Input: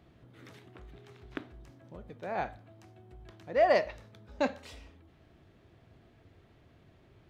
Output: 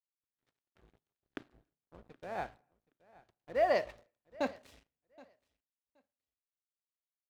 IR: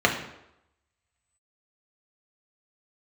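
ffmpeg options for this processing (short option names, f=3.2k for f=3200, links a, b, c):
-filter_complex "[0:a]aeval=exprs='sgn(val(0))*max(abs(val(0))-0.00335,0)':c=same,agate=range=-23dB:threshold=-57dB:ratio=16:detection=peak,aecho=1:1:773|1546:0.0708|0.012,asplit=2[a][b];[1:a]atrim=start_sample=2205,afade=t=out:st=0.37:d=0.01,atrim=end_sample=16758[c];[b][c]afir=irnorm=-1:irlink=0,volume=-38.5dB[d];[a][d]amix=inputs=2:normalize=0,volume=-4.5dB"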